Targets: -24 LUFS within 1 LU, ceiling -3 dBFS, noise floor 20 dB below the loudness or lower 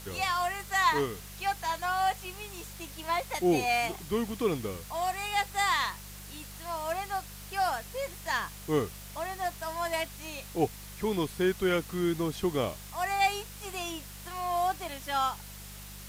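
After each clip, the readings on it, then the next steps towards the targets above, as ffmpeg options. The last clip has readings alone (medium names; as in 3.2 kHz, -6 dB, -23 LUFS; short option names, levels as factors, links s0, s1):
hum 50 Hz; highest harmonic 200 Hz; hum level -45 dBFS; noise floor -45 dBFS; noise floor target -51 dBFS; loudness -31.0 LUFS; peak level -14.0 dBFS; loudness target -24.0 LUFS
-> -af "bandreject=f=50:t=h:w=4,bandreject=f=100:t=h:w=4,bandreject=f=150:t=h:w=4,bandreject=f=200:t=h:w=4"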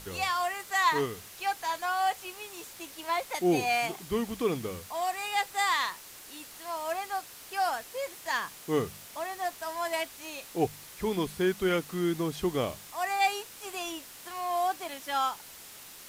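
hum not found; noise floor -48 dBFS; noise floor target -51 dBFS
-> -af "afftdn=nr=6:nf=-48"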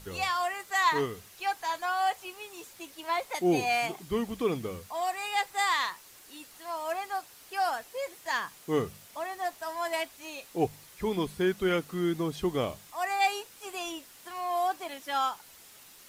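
noise floor -53 dBFS; loudness -31.0 LUFS; peak level -13.5 dBFS; loudness target -24.0 LUFS
-> -af "volume=2.24"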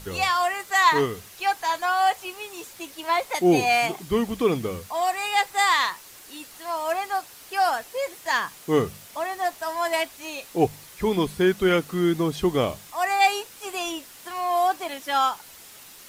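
loudness -24.0 LUFS; peak level -6.5 dBFS; noise floor -46 dBFS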